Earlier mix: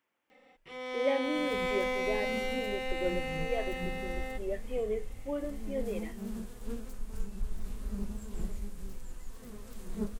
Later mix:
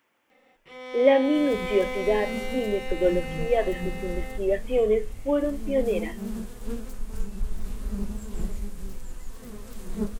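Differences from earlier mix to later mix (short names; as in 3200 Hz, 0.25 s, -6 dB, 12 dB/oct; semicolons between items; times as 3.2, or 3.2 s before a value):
speech +11.5 dB; second sound +6.0 dB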